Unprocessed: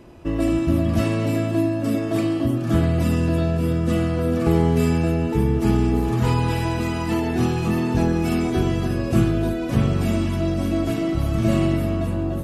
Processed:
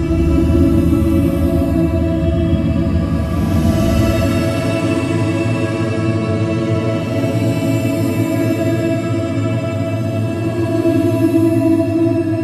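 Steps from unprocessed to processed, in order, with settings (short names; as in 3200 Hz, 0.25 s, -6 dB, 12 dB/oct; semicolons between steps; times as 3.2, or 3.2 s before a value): Paulstretch 12×, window 0.10 s, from 0.66; gain +5 dB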